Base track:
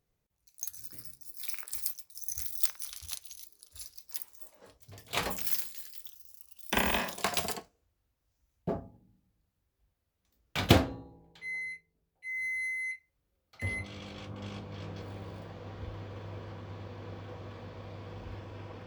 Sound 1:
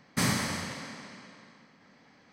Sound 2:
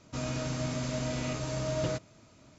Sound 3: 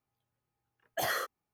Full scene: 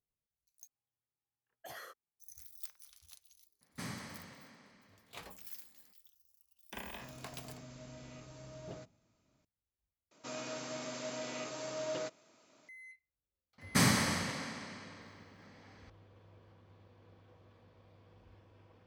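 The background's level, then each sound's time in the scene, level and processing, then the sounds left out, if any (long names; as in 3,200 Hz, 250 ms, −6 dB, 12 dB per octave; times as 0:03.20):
base track −17.5 dB
0:00.67: overwrite with 3 −16.5 dB
0:03.61: mix in 1 −15.5 dB + high-shelf EQ 5,200 Hz −4 dB
0:06.87: mix in 2 −18 dB
0:10.11: overwrite with 2 −4.5 dB + high-pass filter 350 Hz
0:13.58: mix in 1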